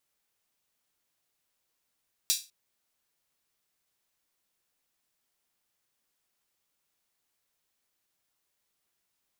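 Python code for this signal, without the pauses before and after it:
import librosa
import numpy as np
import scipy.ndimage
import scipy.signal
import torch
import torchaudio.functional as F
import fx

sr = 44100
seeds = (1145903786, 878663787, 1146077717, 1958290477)

y = fx.drum_hat_open(sr, length_s=0.2, from_hz=4200.0, decay_s=0.28)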